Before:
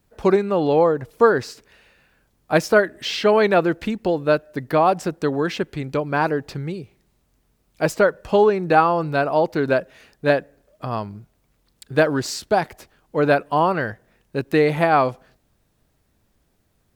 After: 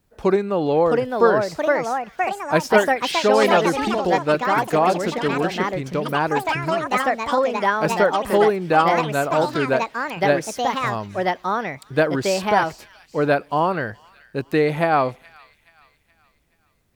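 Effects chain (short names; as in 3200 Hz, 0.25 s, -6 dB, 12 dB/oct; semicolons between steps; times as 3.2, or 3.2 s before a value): thin delay 0.424 s, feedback 46%, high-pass 2100 Hz, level -17 dB; echoes that change speed 0.715 s, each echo +4 st, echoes 3; gain -1.5 dB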